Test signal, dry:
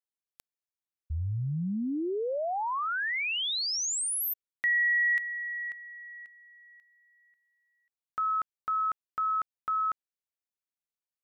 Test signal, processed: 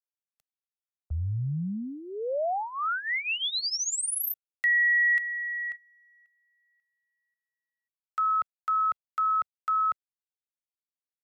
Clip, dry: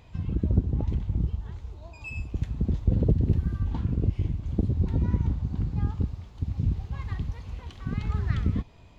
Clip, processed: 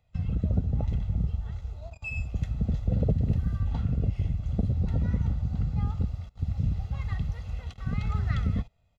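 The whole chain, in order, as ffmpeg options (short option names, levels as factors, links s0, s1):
-filter_complex "[0:a]agate=range=0.112:threshold=0.00631:ratio=16:release=55:detection=rms,aecho=1:1:1.5:0.7,acrossover=split=170[s0][s1];[s0]acompressor=threshold=0.0398:ratio=6:attack=65:release=20:knee=6:detection=rms[s2];[s2][s1]amix=inputs=2:normalize=0,volume=0.891"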